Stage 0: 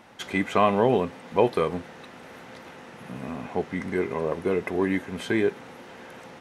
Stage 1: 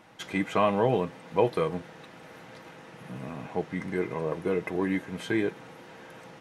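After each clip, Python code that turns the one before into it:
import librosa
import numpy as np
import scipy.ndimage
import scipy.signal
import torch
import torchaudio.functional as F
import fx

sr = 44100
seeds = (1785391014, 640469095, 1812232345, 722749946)

y = fx.peak_eq(x, sr, hz=120.0, db=3.0, octaves=0.84)
y = y + 0.39 * np.pad(y, (int(6.3 * sr / 1000.0), 0))[:len(y)]
y = y * 10.0 ** (-4.0 / 20.0)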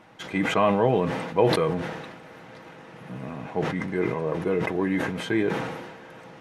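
y = fx.high_shelf(x, sr, hz=4700.0, db=-7.5)
y = fx.sustainer(y, sr, db_per_s=42.0)
y = y * 10.0 ** (2.5 / 20.0)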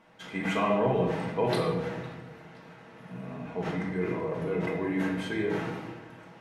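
y = fx.room_shoebox(x, sr, seeds[0], volume_m3=490.0, walls='mixed', distance_m=1.6)
y = y * 10.0 ** (-9.0 / 20.0)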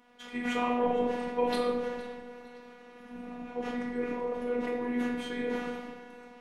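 y = fx.robotise(x, sr, hz=243.0)
y = fx.echo_alternate(y, sr, ms=231, hz=890.0, feedback_pct=57, wet_db=-14.0)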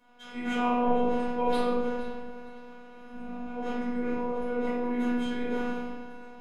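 y = fx.room_shoebox(x, sr, seeds[1], volume_m3=320.0, walls='furnished', distance_m=5.3)
y = y * 10.0 ** (-8.5 / 20.0)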